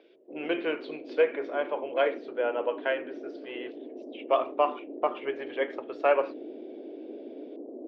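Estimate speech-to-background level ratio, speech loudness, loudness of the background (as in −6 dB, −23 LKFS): 12.5 dB, −30.0 LKFS, −42.5 LKFS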